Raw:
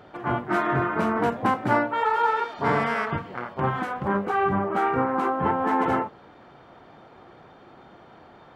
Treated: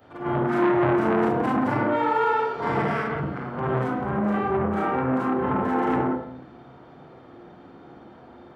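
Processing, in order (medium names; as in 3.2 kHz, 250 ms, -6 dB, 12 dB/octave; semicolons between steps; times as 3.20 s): short-time spectra conjugated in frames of 108 ms; on a send at -1 dB: reverberation RT60 0.60 s, pre-delay 76 ms; on the sum: transformer saturation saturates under 940 Hz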